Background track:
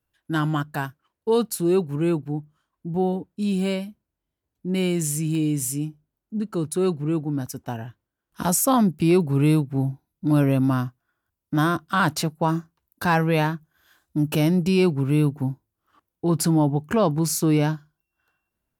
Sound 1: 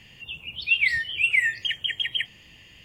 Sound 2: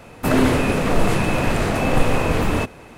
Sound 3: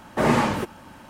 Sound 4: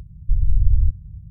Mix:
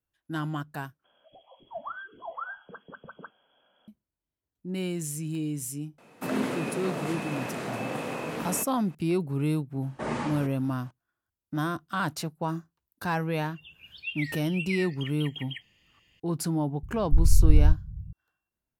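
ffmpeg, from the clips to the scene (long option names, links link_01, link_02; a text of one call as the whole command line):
ffmpeg -i bed.wav -i cue0.wav -i cue1.wav -i cue2.wav -i cue3.wav -filter_complex "[1:a]asplit=2[link_01][link_02];[0:a]volume=-8.5dB[link_03];[link_01]lowpass=frequency=2900:width_type=q:width=0.5098,lowpass=frequency=2900:width_type=q:width=0.6013,lowpass=frequency=2900:width_type=q:width=0.9,lowpass=frequency=2900:width_type=q:width=2.563,afreqshift=-3400[link_04];[2:a]highpass=frequency=150:width=0.5412,highpass=frequency=150:width=1.3066[link_05];[3:a]aresample=22050,aresample=44100[link_06];[link_03]asplit=2[link_07][link_08];[link_07]atrim=end=1.044[link_09];[link_04]atrim=end=2.84,asetpts=PTS-STARTPTS,volume=-15.5dB[link_10];[link_08]atrim=start=3.876[link_11];[link_05]atrim=end=2.97,asetpts=PTS-STARTPTS,volume=-12.5dB,afade=type=in:duration=0.004:curve=hsin,afade=type=out:start_time=2.966:duration=0.004:curve=hsin,adelay=5980[link_12];[link_06]atrim=end=1.09,asetpts=PTS-STARTPTS,volume=-12dB,afade=type=in:duration=0.004:curve=hsin,afade=type=out:start_time=1.086:duration=0.004:curve=hsin,adelay=9820[link_13];[link_02]atrim=end=2.84,asetpts=PTS-STARTPTS,volume=-14dB,afade=type=in:duration=0.004:curve=hsin,afade=type=out:start_time=2.836:duration=0.004:curve=hsin,adelay=13360[link_14];[4:a]atrim=end=1.3,asetpts=PTS-STARTPTS,volume=-1.5dB,afade=type=in:duration=0.004:curve=hsin,afade=type=out:start_time=1.296:duration=0.004:curve=hsin,adelay=16830[link_15];[link_09][link_10]acrossfade=duration=0.004:curve1=hsin:curve2=hsin[link_16];[link_16][link_11]acrossfade=duration=0.004:curve1=hsin:curve2=hsin[link_17];[link_17][link_12][link_13][link_14][link_15]amix=inputs=5:normalize=0" out.wav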